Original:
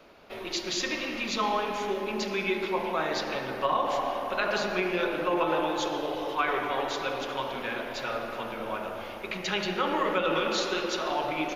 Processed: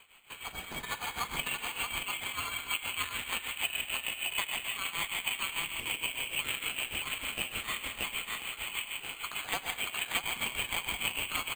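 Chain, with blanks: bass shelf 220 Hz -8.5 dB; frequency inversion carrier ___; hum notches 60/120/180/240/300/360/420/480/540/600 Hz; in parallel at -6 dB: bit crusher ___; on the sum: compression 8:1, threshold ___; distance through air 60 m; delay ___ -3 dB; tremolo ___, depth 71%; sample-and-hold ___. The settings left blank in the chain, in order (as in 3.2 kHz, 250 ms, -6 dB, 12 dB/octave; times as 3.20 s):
3.6 kHz, 4-bit, -27 dBFS, 629 ms, 6.6 Hz, 8×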